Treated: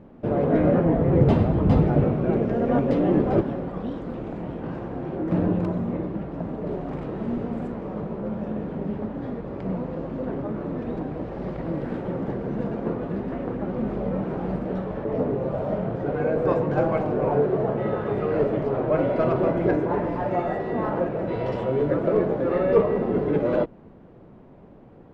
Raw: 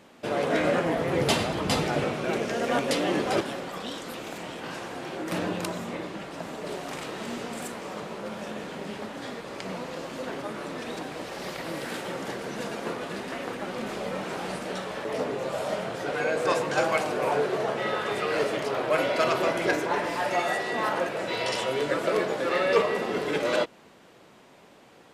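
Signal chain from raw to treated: low-pass 1.2 kHz 6 dB/octave; tilt EQ -4.5 dB/octave

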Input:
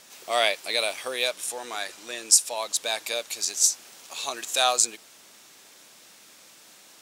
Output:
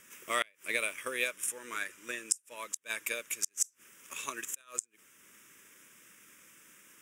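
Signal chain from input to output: static phaser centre 1.8 kHz, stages 4; transient shaper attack +6 dB, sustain -3 dB; inverted gate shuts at -12 dBFS, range -32 dB; trim -2.5 dB

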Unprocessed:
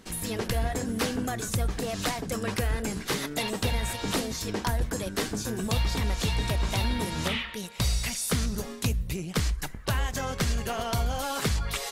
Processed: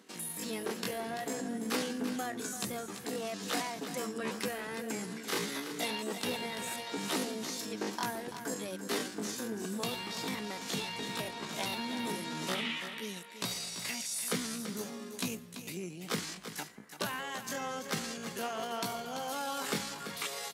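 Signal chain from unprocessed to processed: high-pass 190 Hz 24 dB/octave; dynamic bell 600 Hz, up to -3 dB, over -52 dBFS, Q 7.2; tempo 0.58×; delay 337 ms -10 dB; trim -5 dB

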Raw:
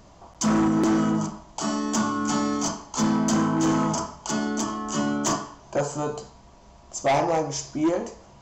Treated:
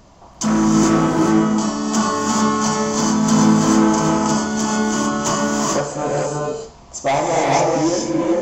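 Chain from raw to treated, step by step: gated-style reverb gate 470 ms rising, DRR -3.5 dB; trim +3 dB

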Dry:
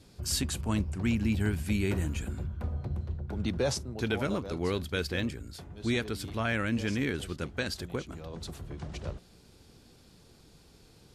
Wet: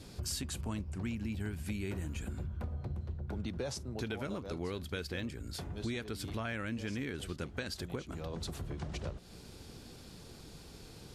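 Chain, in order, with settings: compression 5:1, threshold -43 dBFS, peak gain reduction 17 dB; trim +6 dB

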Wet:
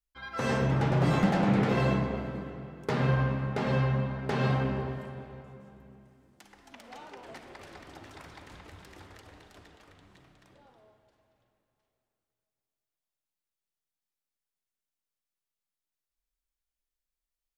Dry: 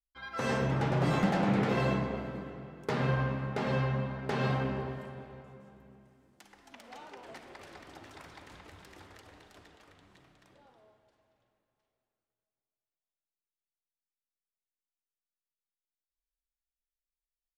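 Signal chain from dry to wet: bass shelf 160 Hz +4.5 dB; trim +1.5 dB

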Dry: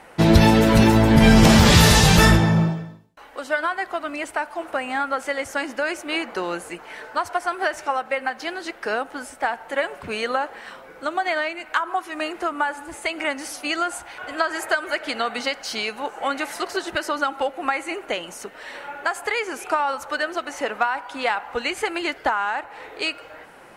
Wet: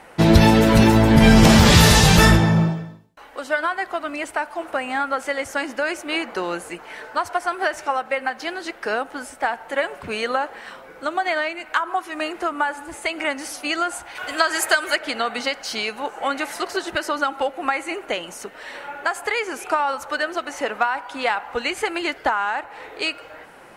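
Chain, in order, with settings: 14.15–14.96 s: treble shelf 2.5 kHz +11 dB; trim +1 dB

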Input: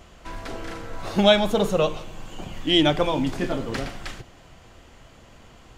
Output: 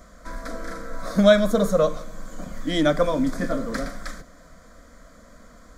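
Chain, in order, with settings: static phaser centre 560 Hz, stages 8; trim +3.5 dB

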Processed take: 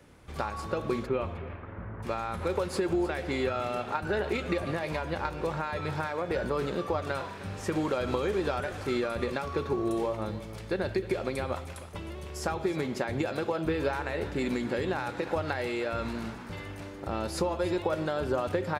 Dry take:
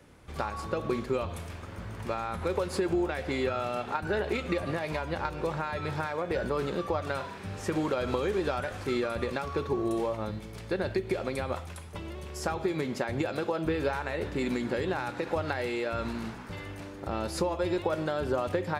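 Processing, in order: 1.06–2.02 s: low-pass 3.4 kHz -> 1.7 kHz 24 dB/octave; on a send: delay 309 ms -16 dB

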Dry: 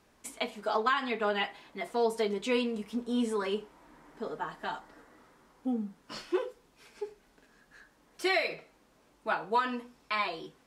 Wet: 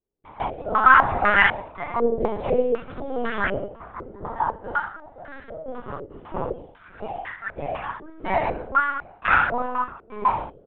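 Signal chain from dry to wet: single-diode clipper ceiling -19.5 dBFS; gate with hold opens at -52 dBFS; Chebyshev high-pass 230 Hz, order 10; tilt EQ +4.5 dB/octave; gated-style reverb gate 260 ms falling, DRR -1 dB; in parallel at -4 dB: bit crusher 6-bit; on the sum: ever faster or slower copies 227 ms, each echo +2 st, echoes 3, each echo -6 dB; on a send: feedback delay 559 ms, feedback 26%, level -23 dB; on the sum: LPC vocoder at 8 kHz pitch kept; step-sequenced low-pass 4 Hz 410–1700 Hz

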